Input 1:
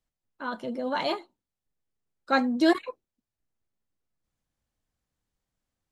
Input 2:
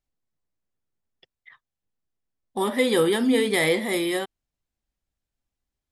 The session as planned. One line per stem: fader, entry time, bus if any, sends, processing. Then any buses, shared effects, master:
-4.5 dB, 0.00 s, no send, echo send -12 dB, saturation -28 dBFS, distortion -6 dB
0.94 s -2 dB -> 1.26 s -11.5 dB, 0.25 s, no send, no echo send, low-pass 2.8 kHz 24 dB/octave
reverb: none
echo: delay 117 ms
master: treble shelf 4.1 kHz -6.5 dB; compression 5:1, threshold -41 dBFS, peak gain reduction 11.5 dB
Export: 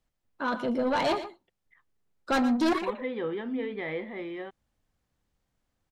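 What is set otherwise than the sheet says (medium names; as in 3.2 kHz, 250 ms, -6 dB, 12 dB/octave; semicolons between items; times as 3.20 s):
stem 1 -4.5 dB -> +6.5 dB; master: missing compression 5:1, threshold -41 dBFS, peak gain reduction 11.5 dB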